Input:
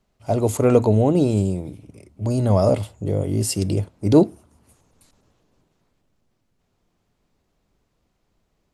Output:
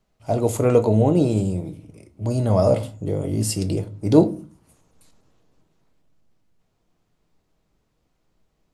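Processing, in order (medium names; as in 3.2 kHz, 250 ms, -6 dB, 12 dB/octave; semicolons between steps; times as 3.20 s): simulated room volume 190 m³, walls furnished, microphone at 0.57 m; trim -1.5 dB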